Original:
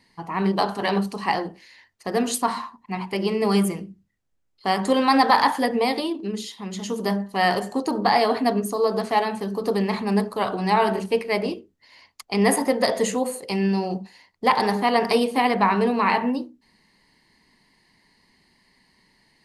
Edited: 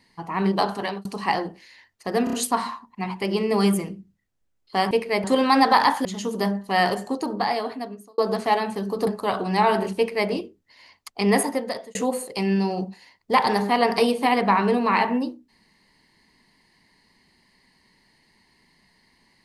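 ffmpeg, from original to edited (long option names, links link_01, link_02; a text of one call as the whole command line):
ffmpeg -i in.wav -filter_complex "[0:a]asplit=11[link_01][link_02][link_03][link_04][link_05][link_06][link_07][link_08][link_09][link_10][link_11];[link_01]atrim=end=1.05,asetpts=PTS-STARTPTS,afade=type=out:start_time=0.75:duration=0.3[link_12];[link_02]atrim=start=1.05:end=2.272,asetpts=PTS-STARTPTS,afade=type=in:duration=0.004:curve=hsin[link_13];[link_03]atrim=start=2.238:end=2.272[link_14];[link_04]atrim=start=2.238:end=2.272[link_15];[link_05]atrim=start=2.238:end=4.822[link_16];[link_06]atrim=start=11.098:end=11.432[link_17];[link_07]atrim=start=4.818:end=5.632[link_18];[link_08]atrim=start=6.698:end=8.83,asetpts=PTS-STARTPTS,afade=type=out:start_time=0.842:duration=1.29[link_19];[link_09]atrim=start=8.83:end=9.722,asetpts=PTS-STARTPTS,afade=type=in:duration=0.004:curve=hsin[link_20];[link_10]atrim=start=10.198:end=13.08,asetpts=PTS-STARTPTS,afade=type=out:start_time=2.232:duration=0.65[link_21];[link_11]atrim=start=13.08,asetpts=PTS-STARTPTS,afade=type=in:duration=0.004:curve=hsin[link_22];[link_12][link_13]concat=n=2:v=0:a=1[link_23];[link_23][link_14]acrossfade=duration=0.004:curve1=hsin:curve2=hsin[link_24];[link_24][link_15]acrossfade=duration=0.004:curve1=hsin:curve2=hsin[link_25];[link_25][link_16]acrossfade=duration=0.004:curve1=hsin:curve2=hsin[link_26];[link_26][link_17]acrossfade=duration=0.004:curve1=hsin:curve2=hsin[link_27];[link_27][link_18]acrossfade=duration=0.004:curve1=hsin:curve2=hsin[link_28];[link_19][link_20]concat=n=2:v=0:a=1[link_29];[link_28][link_29]acrossfade=duration=0.004:curve1=hsin:curve2=hsin[link_30];[link_21][link_22]concat=n=2:v=0:a=1[link_31];[link_30][link_31]acrossfade=duration=0.004:curve1=hsin:curve2=hsin" out.wav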